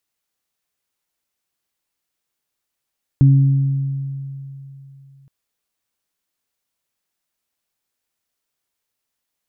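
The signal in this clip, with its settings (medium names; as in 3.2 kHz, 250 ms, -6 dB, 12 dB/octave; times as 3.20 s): additive tone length 2.07 s, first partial 137 Hz, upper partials -11 dB, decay 3.11 s, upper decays 1.59 s, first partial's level -6.5 dB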